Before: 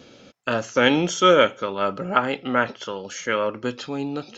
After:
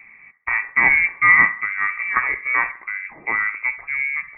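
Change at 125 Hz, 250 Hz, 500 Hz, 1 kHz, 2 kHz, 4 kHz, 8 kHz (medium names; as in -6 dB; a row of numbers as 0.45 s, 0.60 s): under -10 dB, -16.5 dB, -21.5 dB, -1.0 dB, +11.5 dB, under -35 dB, no reading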